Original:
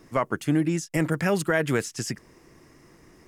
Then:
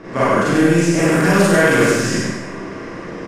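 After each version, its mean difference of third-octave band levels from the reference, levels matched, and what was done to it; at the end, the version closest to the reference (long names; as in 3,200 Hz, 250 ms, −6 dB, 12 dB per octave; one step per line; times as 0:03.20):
10.5 dB: compressor on every frequency bin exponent 0.6
low-pass that shuts in the quiet parts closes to 2,800 Hz, open at −17 dBFS
single-tap delay 98 ms −3.5 dB
four-comb reverb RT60 0.85 s, combs from 32 ms, DRR −8.5 dB
level −1.5 dB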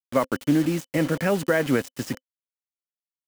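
7.5 dB: high-pass filter 50 Hz 24 dB per octave
bass and treble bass −2 dB, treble −8 dB
bit reduction 6 bits
hollow resonant body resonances 260/520/3,000 Hz, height 9 dB, ringing for 55 ms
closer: second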